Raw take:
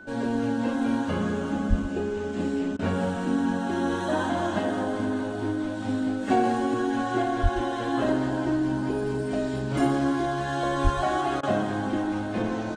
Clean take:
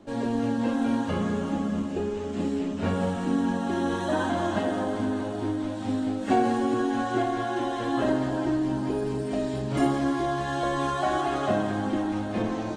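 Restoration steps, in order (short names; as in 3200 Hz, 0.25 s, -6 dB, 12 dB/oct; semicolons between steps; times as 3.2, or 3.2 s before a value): notch 1500 Hz, Q 30; de-plosive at 1.69/7.42/10.83; interpolate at 2.77/11.41, 20 ms; inverse comb 0.123 s -14 dB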